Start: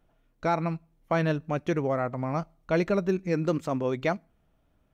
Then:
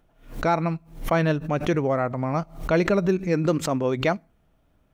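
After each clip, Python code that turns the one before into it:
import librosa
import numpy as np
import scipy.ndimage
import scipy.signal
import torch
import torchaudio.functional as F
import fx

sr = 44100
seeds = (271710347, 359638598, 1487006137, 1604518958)

y = fx.pre_swell(x, sr, db_per_s=130.0)
y = F.gain(torch.from_numpy(y), 4.0).numpy()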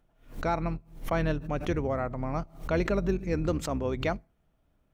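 y = fx.octave_divider(x, sr, octaves=2, level_db=-2.0)
y = F.gain(torch.from_numpy(y), -7.0).numpy()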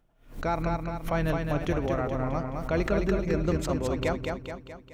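y = fx.echo_feedback(x, sr, ms=213, feedback_pct=51, wet_db=-4)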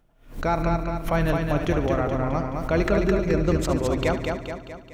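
y = fx.echo_feedback(x, sr, ms=72, feedback_pct=55, wet_db=-13.0)
y = F.gain(torch.from_numpy(y), 4.5).numpy()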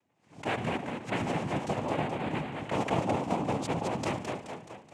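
y = fx.noise_vocoder(x, sr, seeds[0], bands=4)
y = F.gain(torch.from_numpy(y), -7.5).numpy()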